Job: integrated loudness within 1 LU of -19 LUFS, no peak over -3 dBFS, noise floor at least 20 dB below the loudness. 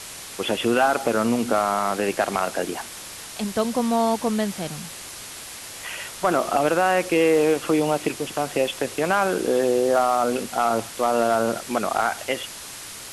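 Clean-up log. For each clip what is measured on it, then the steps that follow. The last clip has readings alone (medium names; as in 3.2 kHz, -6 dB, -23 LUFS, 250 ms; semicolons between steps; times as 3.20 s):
clipped samples 0.3%; clipping level -11.0 dBFS; noise floor -38 dBFS; noise floor target -43 dBFS; loudness -22.5 LUFS; peak level -11.0 dBFS; loudness target -19.0 LUFS
-> clip repair -11 dBFS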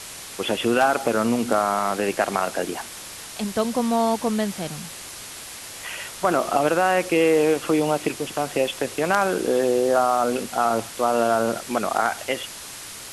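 clipped samples 0.0%; noise floor -38 dBFS; noise floor target -43 dBFS
-> noise reduction 6 dB, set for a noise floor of -38 dBFS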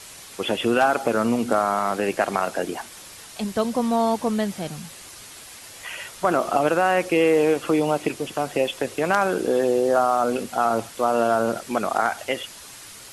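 noise floor -42 dBFS; noise floor target -43 dBFS
-> noise reduction 6 dB, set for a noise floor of -42 dBFS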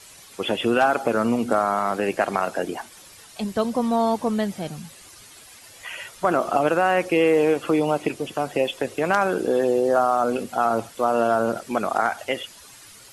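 noise floor -47 dBFS; loudness -22.5 LUFS; peak level -3.5 dBFS; loudness target -19.0 LUFS
-> trim +3.5 dB; peak limiter -3 dBFS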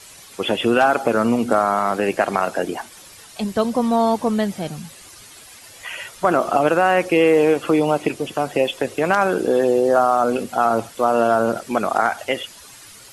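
loudness -19.0 LUFS; peak level -3.0 dBFS; noise floor -43 dBFS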